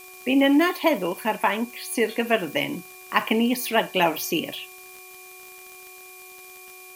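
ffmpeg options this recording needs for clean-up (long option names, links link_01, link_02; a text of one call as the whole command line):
ffmpeg -i in.wav -af "adeclick=threshold=4,bandreject=frequency=369.7:width_type=h:width=4,bandreject=frequency=739.4:width_type=h:width=4,bandreject=frequency=1109.1:width_type=h:width=4,bandreject=frequency=2400:width=30,afftdn=noise_reduction=23:noise_floor=-45" out.wav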